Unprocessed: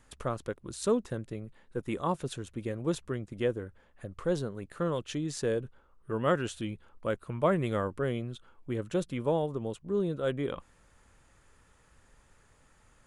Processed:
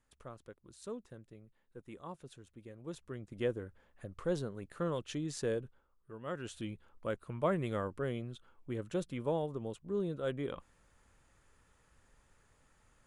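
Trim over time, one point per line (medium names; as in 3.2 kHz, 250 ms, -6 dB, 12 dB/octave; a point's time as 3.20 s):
2.76 s -16 dB
3.43 s -4.5 dB
5.53 s -4.5 dB
6.20 s -17 dB
6.57 s -5.5 dB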